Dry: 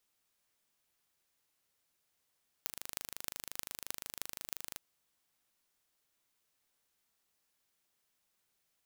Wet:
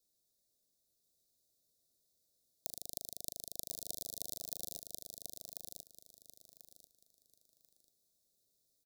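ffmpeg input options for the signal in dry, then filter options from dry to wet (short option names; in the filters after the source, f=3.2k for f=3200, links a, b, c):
-f lavfi -i "aevalsrc='0.376*eq(mod(n,1716),0)*(0.5+0.5*eq(mod(n,13728),0))':d=2.12:s=44100"
-filter_complex "[0:a]asuperstop=centerf=1600:order=20:qfactor=0.55,asplit=2[a][b];[b]aecho=0:1:1040|2080|3120:0.668|0.16|0.0385[c];[a][c]amix=inputs=2:normalize=0"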